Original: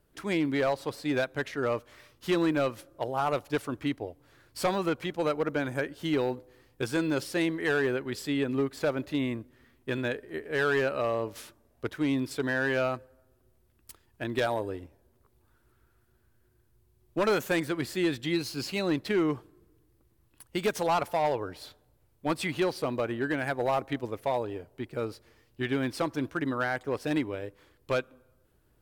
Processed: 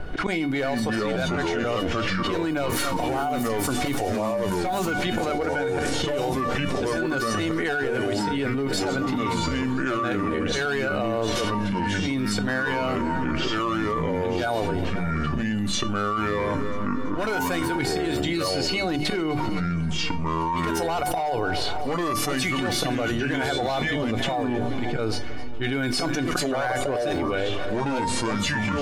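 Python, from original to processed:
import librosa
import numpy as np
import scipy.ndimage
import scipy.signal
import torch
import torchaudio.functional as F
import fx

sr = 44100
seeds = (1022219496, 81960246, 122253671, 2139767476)

y = fx.crossing_spikes(x, sr, level_db=-36.5, at=(2.69, 4.91))
y = fx.env_lowpass(y, sr, base_hz=2800.0, full_db=-25.0)
y = fx.low_shelf(y, sr, hz=260.0, db=2.0)
y = fx.hum_notches(y, sr, base_hz=50, count=8)
y = fx.auto_swell(y, sr, attack_ms=162.0)
y = fx.comb_fb(y, sr, f0_hz=740.0, decay_s=0.17, harmonics='all', damping=0.0, mix_pct=90)
y = fx.echo_feedback(y, sr, ms=261, feedback_pct=56, wet_db=-22.5)
y = fx.echo_pitch(y, sr, ms=223, semitones=-4, count=2, db_per_echo=-3.0)
y = fx.env_flatten(y, sr, amount_pct=100)
y = y * librosa.db_to_amplitude(8.0)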